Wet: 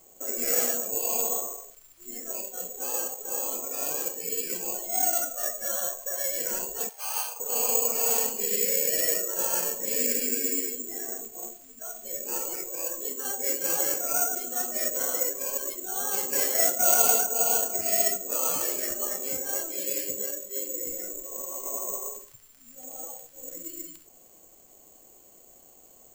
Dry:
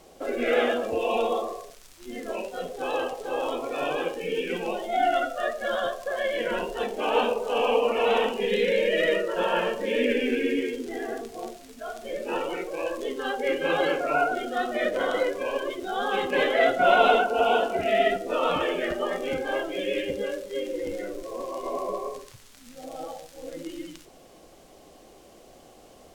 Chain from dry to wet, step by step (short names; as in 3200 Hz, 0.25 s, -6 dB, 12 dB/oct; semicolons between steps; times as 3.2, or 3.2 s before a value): 6.89–7.4 HPF 820 Hz 24 dB/oct; careless resampling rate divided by 6×, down filtered, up zero stuff; gain -10 dB